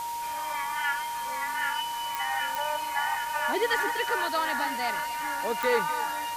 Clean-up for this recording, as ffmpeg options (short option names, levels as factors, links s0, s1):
-af "adeclick=t=4,bandreject=f=940:w=30,afwtdn=0.0079"